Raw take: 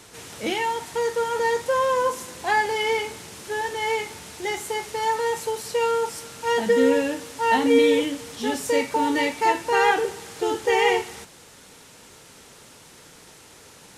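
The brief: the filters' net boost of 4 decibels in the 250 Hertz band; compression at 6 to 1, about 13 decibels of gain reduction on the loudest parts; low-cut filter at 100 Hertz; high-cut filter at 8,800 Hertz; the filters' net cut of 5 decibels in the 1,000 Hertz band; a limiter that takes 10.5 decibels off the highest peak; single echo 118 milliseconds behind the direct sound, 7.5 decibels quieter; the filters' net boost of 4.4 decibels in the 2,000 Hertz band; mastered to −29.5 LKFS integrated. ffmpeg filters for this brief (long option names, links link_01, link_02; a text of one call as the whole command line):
ffmpeg -i in.wav -af "highpass=100,lowpass=8800,equalizer=frequency=250:width_type=o:gain=5,equalizer=frequency=1000:width_type=o:gain=-7.5,equalizer=frequency=2000:width_type=o:gain=7,acompressor=threshold=-26dB:ratio=6,alimiter=level_in=3dB:limit=-24dB:level=0:latency=1,volume=-3dB,aecho=1:1:118:0.422,volume=4.5dB" out.wav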